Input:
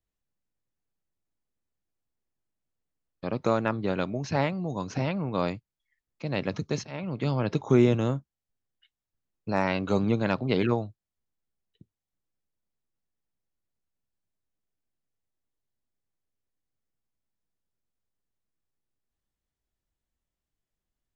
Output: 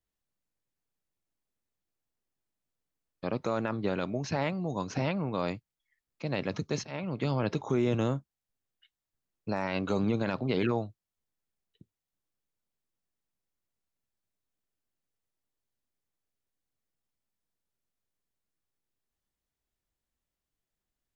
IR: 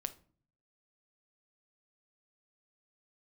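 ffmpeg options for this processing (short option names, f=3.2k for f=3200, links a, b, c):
-af "alimiter=limit=-17.5dB:level=0:latency=1:release=23,lowshelf=f=170:g=-4"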